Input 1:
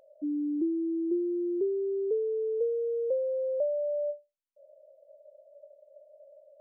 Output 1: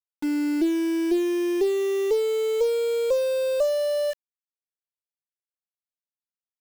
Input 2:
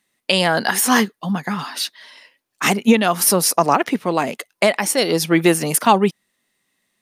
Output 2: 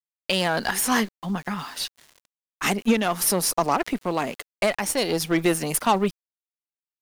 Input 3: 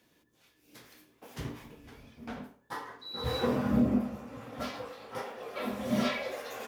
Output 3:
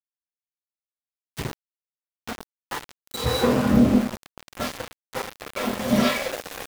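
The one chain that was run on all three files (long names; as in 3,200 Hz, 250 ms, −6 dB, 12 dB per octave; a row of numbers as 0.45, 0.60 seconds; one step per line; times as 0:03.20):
harmonic generator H 5 −32 dB, 8 −25 dB, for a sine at −2 dBFS
centre clipping without the shift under −35 dBFS
loudness normalisation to −24 LKFS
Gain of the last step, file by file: +5.5, −7.0, +8.0 decibels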